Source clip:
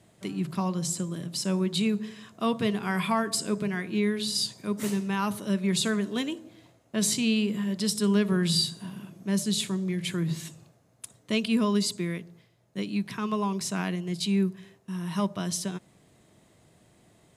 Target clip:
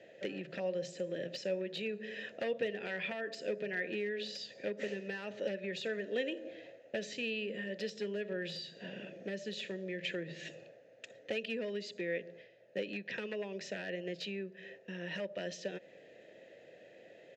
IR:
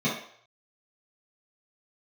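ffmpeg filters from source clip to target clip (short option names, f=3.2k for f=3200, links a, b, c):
-filter_complex "[0:a]lowshelf=f=110:g=-7,acompressor=threshold=-36dB:ratio=8,aresample=16000,aresample=44100,aeval=exprs='0.0266*(abs(mod(val(0)/0.0266+3,4)-2)-1)':c=same,asplit=3[a][b][c];[a]bandpass=f=530:t=q:w=8,volume=0dB[d];[b]bandpass=f=1.84k:t=q:w=8,volume=-6dB[e];[c]bandpass=f=2.48k:t=q:w=8,volume=-9dB[f];[d][e][f]amix=inputs=3:normalize=0,volume=17.5dB"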